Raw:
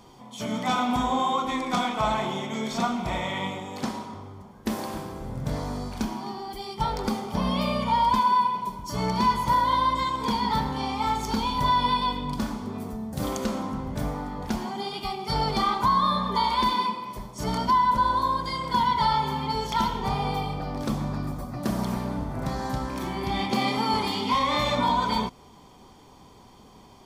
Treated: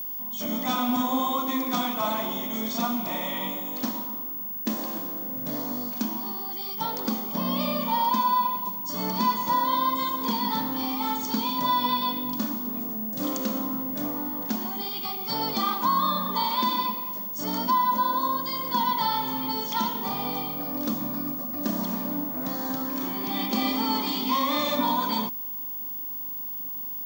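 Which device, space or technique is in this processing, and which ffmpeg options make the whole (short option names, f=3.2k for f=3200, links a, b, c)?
old television with a line whistle: -af "highpass=f=200:w=0.5412,highpass=f=200:w=1.3066,equalizer=f=280:t=q:w=4:g=6,equalizer=f=400:t=q:w=4:g=-8,equalizer=f=810:t=q:w=4:g=-5,equalizer=f=1.4k:t=q:w=4:g=-4,equalizer=f=2.2k:t=q:w=4:g=-5,equalizer=f=6.3k:t=q:w=4:g=3,lowpass=f=8.2k:w=0.5412,lowpass=f=8.2k:w=1.3066,aeval=exprs='val(0)+0.0282*sin(2*PI*15625*n/s)':c=same"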